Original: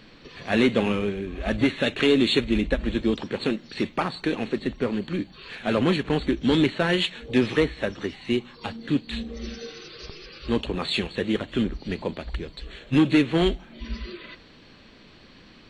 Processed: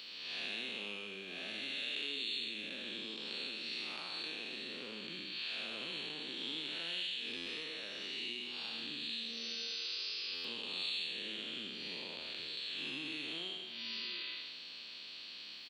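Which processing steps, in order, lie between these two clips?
time blur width 0.238 s; HPF 150 Hz 12 dB/oct; tilt +3.5 dB/oct; compressor 6:1, threshold -39 dBFS, peak gain reduction 17 dB; band shelf 3500 Hz +10 dB 1.2 oct; on a send: echo 78 ms -11.5 dB; on the sum: stuck buffer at 7.36/10.34, samples 512, times 8; gain -7 dB

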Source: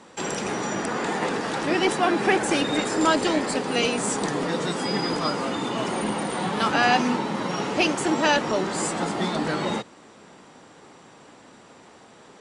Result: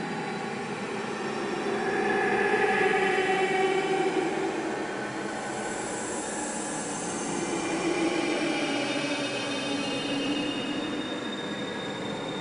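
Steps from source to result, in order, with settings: pre-echo 0.123 s -14 dB; Paulstretch 24×, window 0.10 s, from 2.19; gain -7 dB

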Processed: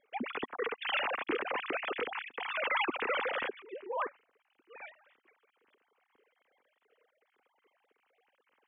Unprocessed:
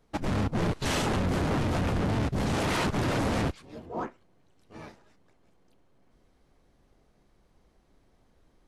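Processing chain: sine-wave speech; fifteen-band EQ 250 Hz +9 dB, 630 Hz -9 dB, 2500 Hz +5 dB; gain -6 dB

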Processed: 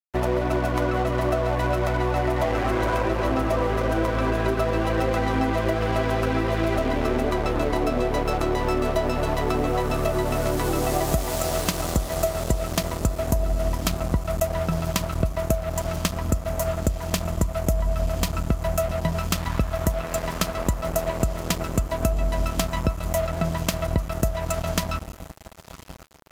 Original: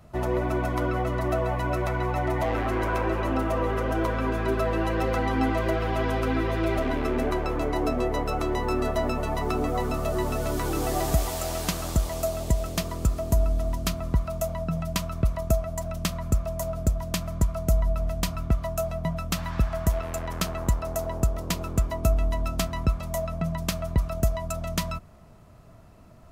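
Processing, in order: diffused feedback echo 1.008 s, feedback 63%, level -13 dB; dynamic EQ 580 Hz, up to +4 dB, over -42 dBFS, Q 3.5; crossover distortion -35.5 dBFS; compressor, threshold -26 dBFS, peak gain reduction 9.5 dB; gain +7.5 dB

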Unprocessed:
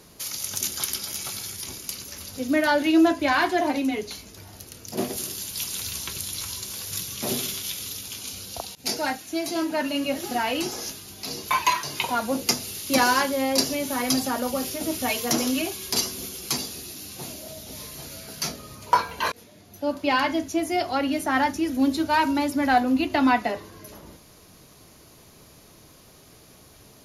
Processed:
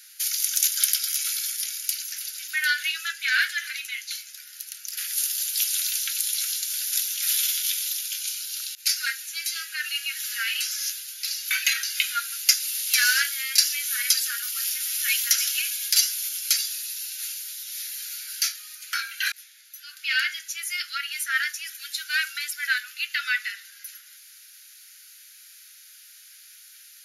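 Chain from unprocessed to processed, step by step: steep high-pass 1400 Hz 96 dB/oct; high shelf 11000 Hz +7.5 dB; gain +3.5 dB

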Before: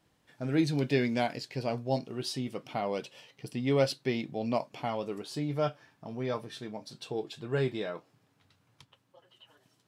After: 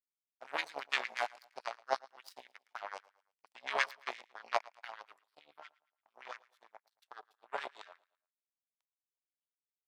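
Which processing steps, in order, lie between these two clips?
octaver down 2 oct, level -2 dB; 1.76–2.25 HPF 81 Hz 24 dB/oct; in parallel at +0.5 dB: compressor, threshold -35 dBFS, peak gain reduction 14.5 dB; 5.19–6.15 on the sum: fixed phaser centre 1900 Hz, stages 6; power-law curve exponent 3; LFO high-pass sine 8.7 Hz 680–1900 Hz; on a send: feedback echo 0.112 s, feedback 39%, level -22.5 dB; on the sum: gain +1.5 dB

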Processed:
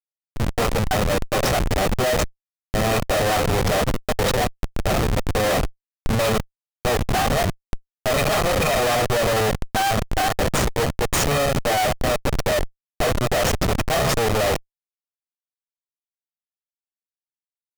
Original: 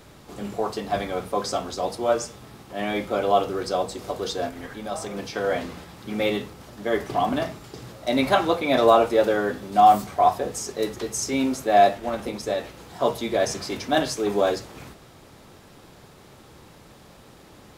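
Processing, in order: minimum comb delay 1.7 ms; Schmitt trigger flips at -29.5 dBFS; pitch shift +1 st; gain +7 dB

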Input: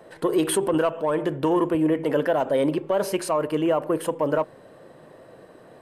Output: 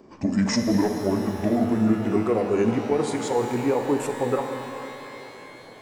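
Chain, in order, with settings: gliding pitch shift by -9.5 st ending unshifted; shimmer reverb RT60 3.2 s, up +12 st, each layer -8 dB, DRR 5 dB

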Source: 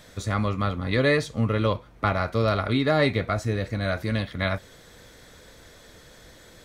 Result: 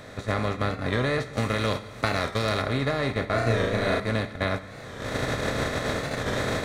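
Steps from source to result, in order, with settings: per-bin compression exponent 0.4; recorder AGC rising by 14 dB/s; 1.33–2.62 high shelf 2700 Hz +10 dB; gate -18 dBFS, range -20 dB; compressor 4:1, threshold -28 dBFS, peak gain reduction 13 dB; low shelf 69 Hz +6 dB; 3.27–4 flutter echo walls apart 6.1 m, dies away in 0.95 s; on a send at -11 dB: reverb RT60 1.3 s, pre-delay 4 ms; on the sum: record warp 45 rpm, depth 100 cents; gain +3 dB

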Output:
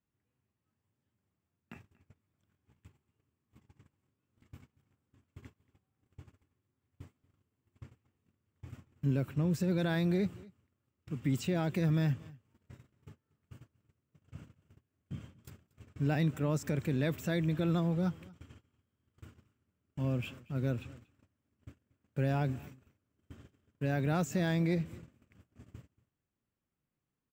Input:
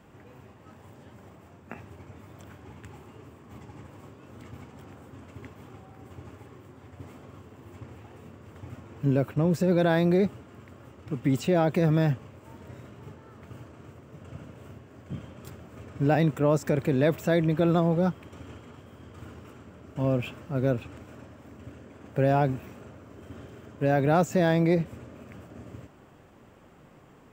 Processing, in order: gate -42 dBFS, range -27 dB; bell 640 Hz -10 dB 2.2 oct; echo 0.234 s -23 dB; gain -3.5 dB

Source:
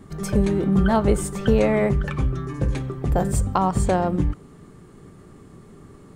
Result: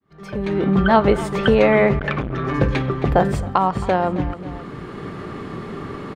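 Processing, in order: opening faded in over 0.71 s; air absorption 330 m; feedback echo 0.268 s, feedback 24%, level -17 dB; in parallel at +3 dB: compressor, threshold -28 dBFS, peak gain reduction 14 dB; on the sum: tilt +3 dB/oct; AGC gain up to 14.5 dB; 1.99–2.54 core saturation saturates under 630 Hz; gain -1 dB

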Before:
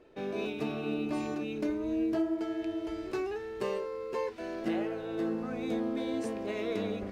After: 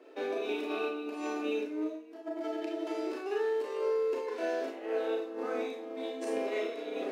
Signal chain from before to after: negative-ratio compressor -36 dBFS, ratio -0.5; elliptic high-pass 270 Hz, stop band 40 dB; Schroeder reverb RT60 0.4 s, combs from 26 ms, DRR -1 dB

